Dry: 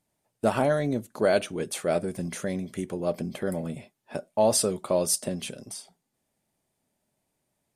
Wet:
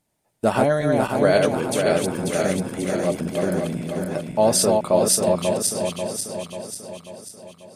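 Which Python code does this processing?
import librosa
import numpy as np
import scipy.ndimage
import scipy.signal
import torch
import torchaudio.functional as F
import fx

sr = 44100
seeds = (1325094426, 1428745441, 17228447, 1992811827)

y = fx.reverse_delay_fb(x, sr, ms=270, feedback_pct=72, wet_db=-2.5)
y = y * librosa.db_to_amplitude(4.0)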